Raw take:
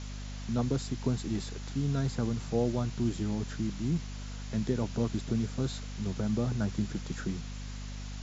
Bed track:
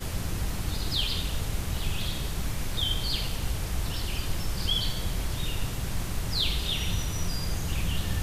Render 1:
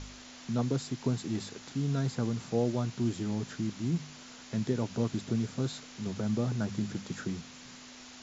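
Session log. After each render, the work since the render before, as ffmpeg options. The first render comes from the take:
-af "bandreject=f=50:t=h:w=4,bandreject=f=100:t=h:w=4,bandreject=f=150:t=h:w=4,bandreject=f=200:t=h:w=4"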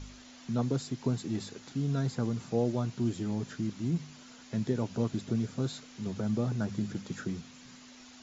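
-af "afftdn=nr=6:nf=-50"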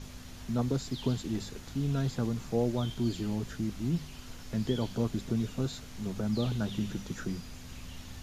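-filter_complex "[1:a]volume=-17dB[a];[0:a][a]amix=inputs=2:normalize=0"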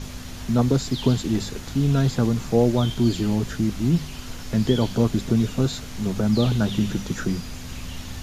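-af "volume=10.5dB"

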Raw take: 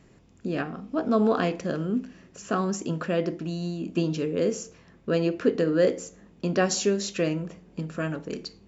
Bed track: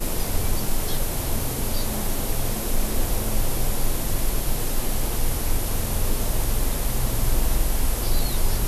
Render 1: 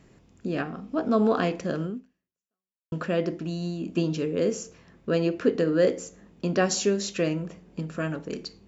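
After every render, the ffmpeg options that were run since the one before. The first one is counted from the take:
-filter_complex "[0:a]asplit=2[a][b];[a]atrim=end=2.92,asetpts=PTS-STARTPTS,afade=t=out:st=1.85:d=1.07:c=exp[c];[b]atrim=start=2.92,asetpts=PTS-STARTPTS,afade=t=in:d=0.004:c=hsin[d];[c][d]concat=n=2:v=0:a=1"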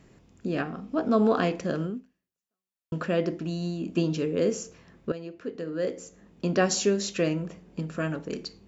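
-filter_complex "[0:a]asplit=2[a][b];[a]atrim=end=5.12,asetpts=PTS-STARTPTS,afade=t=out:st=5.116:d=0.004:c=hsin:silence=0.177828[c];[b]atrim=start=5.12,asetpts=PTS-STARTPTS,afade=t=in:d=1.34:c=qua:silence=0.177828[d];[c][d]concat=n=2:v=0:a=1"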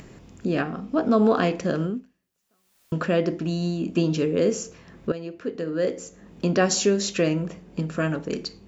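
-filter_complex "[0:a]asplit=2[a][b];[b]alimiter=limit=-19dB:level=0:latency=1:release=230,volume=-2dB[c];[a][c]amix=inputs=2:normalize=0,acompressor=mode=upward:threshold=-39dB:ratio=2.5"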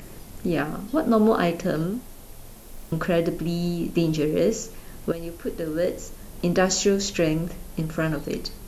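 -filter_complex "[1:a]volume=-18.5dB[a];[0:a][a]amix=inputs=2:normalize=0"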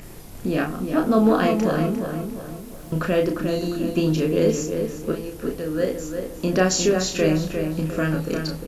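-filter_complex "[0:a]asplit=2[a][b];[b]adelay=32,volume=-4.5dB[c];[a][c]amix=inputs=2:normalize=0,asplit=2[d][e];[e]adelay=352,lowpass=f=2.7k:p=1,volume=-6dB,asplit=2[f][g];[g]adelay=352,lowpass=f=2.7k:p=1,volume=0.44,asplit=2[h][i];[i]adelay=352,lowpass=f=2.7k:p=1,volume=0.44,asplit=2[j][k];[k]adelay=352,lowpass=f=2.7k:p=1,volume=0.44,asplit=2[l][m];[m]adelay=352,lowpass=f=2.7k:p=1,volume=0.44[n];[d][f][h][j][l][n]amix=inputs=6:normalize=0"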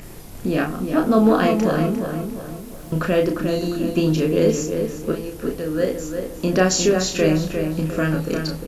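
-af "volume=2dB"

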